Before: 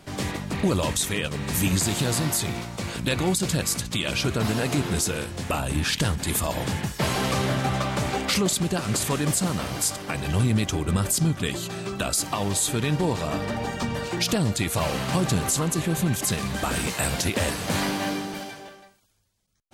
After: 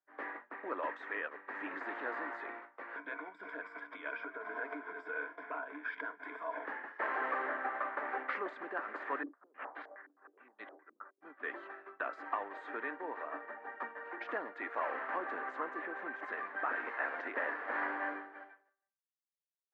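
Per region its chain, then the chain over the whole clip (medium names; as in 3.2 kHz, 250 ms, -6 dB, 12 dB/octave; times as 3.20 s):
2.96–6.65 s: rippled EQ curve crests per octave 1.7, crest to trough 15 dB + compression 12:1, threshold -23 dBFS
9.23–11.22 s: compression 3:1, threshold -27 dBFS + step-sequenced low-pass 9.6 Hz 290–3800 Hz
whole clip: differentiator; expander -38 dBFS; Chebyshev band-pass 270–1800 Hz, order 4; trim +11 dB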